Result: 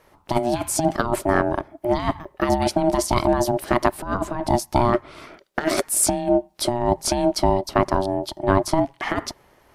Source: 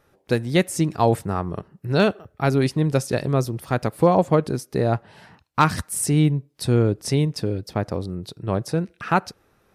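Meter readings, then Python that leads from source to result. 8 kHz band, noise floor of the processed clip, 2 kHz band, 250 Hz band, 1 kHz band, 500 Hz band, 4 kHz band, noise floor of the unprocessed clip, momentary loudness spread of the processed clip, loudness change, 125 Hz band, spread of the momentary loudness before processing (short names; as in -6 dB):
+6.0 dB, -58 dBFS, +0.5 dB, -0.5 dB, +3.0 dB, +1.0 dB, +2.5 dB, -64 dBFS, 7 LU, +0.5 dB, -7.0 dB, 9 LU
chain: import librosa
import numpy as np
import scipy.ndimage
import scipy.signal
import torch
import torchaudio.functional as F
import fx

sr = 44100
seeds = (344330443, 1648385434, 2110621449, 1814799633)

y = x * np.sin(2.0 * np.pi * 480.0 * np.arange(len(x)) / sr)
y = fx.over_compress(y, sr, threshold_db=-24.0, ratio=-0.5)
y = F.gain(torch.from_numpy(y), 6.0).numpy()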